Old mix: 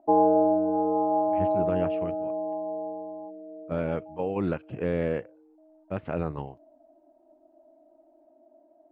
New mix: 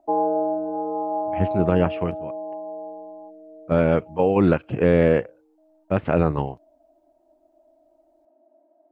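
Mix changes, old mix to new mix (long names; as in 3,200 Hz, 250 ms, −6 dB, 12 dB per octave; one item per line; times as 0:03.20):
speech +10.5 dB
background: add low-shelf EQ 220 Hz −10 dB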